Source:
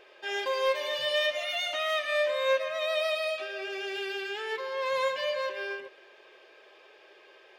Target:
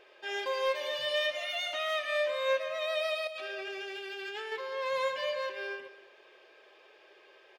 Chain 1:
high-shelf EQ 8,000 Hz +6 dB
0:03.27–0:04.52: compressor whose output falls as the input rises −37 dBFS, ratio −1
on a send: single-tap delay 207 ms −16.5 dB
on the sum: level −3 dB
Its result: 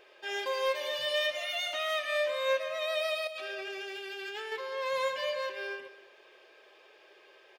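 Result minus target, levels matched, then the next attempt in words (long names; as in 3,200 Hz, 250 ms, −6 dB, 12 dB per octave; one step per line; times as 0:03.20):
8,000 Hz band +3.0 dB
high-shelf EQ 8,000 Hz −2 dB
0:03.27–0:04.52: compressor whose output falls as the input rises −37 dBFS, ratio −1
on a send: single-tap delay 207 ms −16.5 dB
on the sum: level −3 dB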